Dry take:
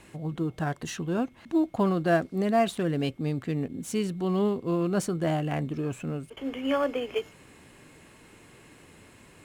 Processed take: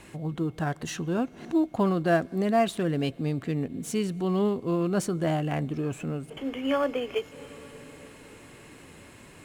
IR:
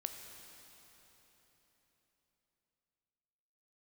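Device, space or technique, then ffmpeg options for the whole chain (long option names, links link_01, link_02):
ducked reverb: -filter_complex "[0:a]asplit=3[link_01][link_02][link_03];[1:a]atrim=start_sample=2205[link_04];[link_02][link_04]afir=irnorm=-1:irlink=0[link_05];[link_03]apad=whole_len=416496[link_06];[link_05][link_06]sidechaincompress=threshold=-43dB:ratio=8:attack=6:release=162,volume=-4dB[link_07];[link_01][link_07]amix=inputs=2:normalize=0"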